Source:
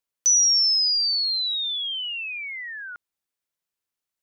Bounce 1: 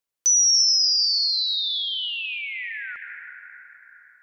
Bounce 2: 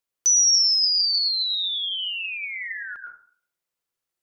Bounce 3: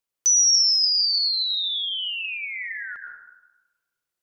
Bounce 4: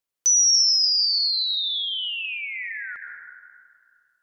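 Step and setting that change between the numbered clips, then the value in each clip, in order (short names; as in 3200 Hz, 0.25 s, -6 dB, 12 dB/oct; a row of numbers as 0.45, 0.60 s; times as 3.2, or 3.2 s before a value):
plate-style reverb, RT60: 4.8, 0.5, 1.1, 2.3 s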